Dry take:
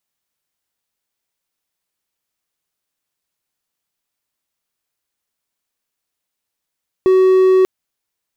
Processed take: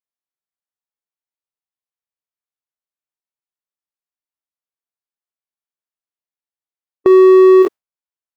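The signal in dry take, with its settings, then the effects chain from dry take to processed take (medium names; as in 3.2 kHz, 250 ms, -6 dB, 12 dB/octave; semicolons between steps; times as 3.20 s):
tone triangle 375 Hz -6 dBFS 0.59 s
spectrogram pixelated in time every 50 ms; gate with hold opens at -11 dBFS; peaking EQ 880 Hz +8 dB 2.8 oct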